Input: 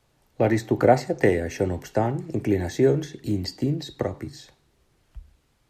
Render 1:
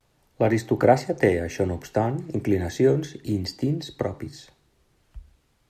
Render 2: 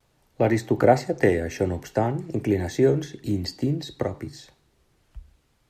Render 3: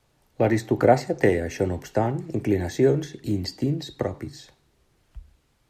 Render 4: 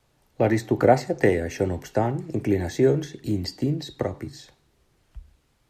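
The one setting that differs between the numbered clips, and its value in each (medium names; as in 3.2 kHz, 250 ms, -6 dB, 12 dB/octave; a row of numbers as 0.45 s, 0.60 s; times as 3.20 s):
vibrato, rate: 0.32 Hz, 0.53 Hz, 14 Hz, 5.5 Hz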